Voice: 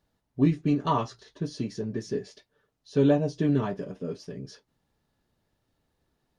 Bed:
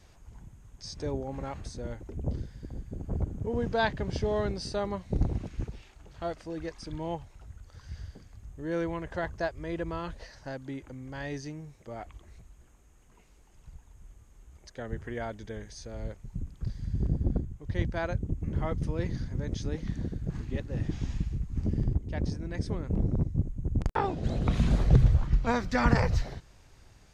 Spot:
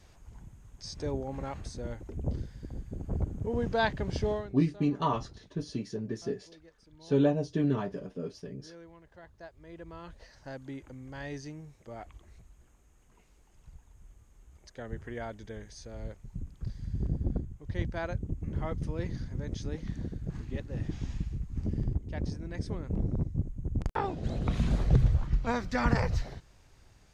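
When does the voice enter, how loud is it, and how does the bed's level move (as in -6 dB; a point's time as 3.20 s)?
4.15 s, -3.5 dB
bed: 4.31 s -0.5 dB
4.55 s -19.5 dB
9.20 s -19.5 dB
10.58 s -3 dB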